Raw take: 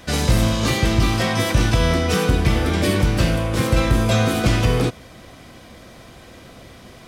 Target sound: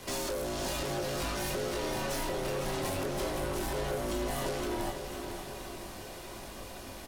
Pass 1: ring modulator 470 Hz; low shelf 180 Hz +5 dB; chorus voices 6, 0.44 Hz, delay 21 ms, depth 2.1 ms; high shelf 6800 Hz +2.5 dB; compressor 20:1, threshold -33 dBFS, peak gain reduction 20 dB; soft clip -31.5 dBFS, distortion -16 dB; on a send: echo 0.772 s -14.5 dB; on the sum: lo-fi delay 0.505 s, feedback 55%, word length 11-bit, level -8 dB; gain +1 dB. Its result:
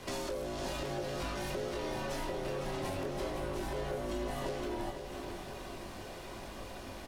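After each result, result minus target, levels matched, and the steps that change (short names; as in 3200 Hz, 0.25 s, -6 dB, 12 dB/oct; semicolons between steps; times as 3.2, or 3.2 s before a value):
compressor: peak gain reduction +6 dB; 8000 Hz band -5.0 dB
change: compressor 20:1, threshold -26.5 dBFS, peak gain reduction 13.5 dB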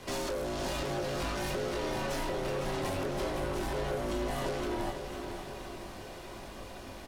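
8000 Hz band -5.0 dB
change: high shelf 6800 Hz +13.5 dB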